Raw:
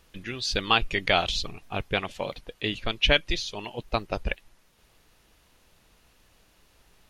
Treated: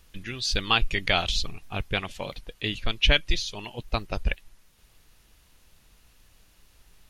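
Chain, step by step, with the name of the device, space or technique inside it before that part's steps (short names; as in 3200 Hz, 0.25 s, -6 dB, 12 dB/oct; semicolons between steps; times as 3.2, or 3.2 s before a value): smiley-face EQ (low shelf 83 Hz +7 dB; bell 540 Hz -4 dB 2.2 oct; high shelf 6200 Hz +4.5 dB)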